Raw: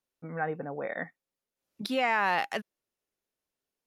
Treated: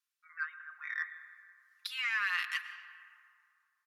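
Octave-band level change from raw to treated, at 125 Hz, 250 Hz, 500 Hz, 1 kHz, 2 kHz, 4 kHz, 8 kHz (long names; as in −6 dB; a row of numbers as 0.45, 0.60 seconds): below −40 dB, below −40 dB, below −40 dB, −14.5 dB, −1.0 dB, −1.0 dB, −2.0 dB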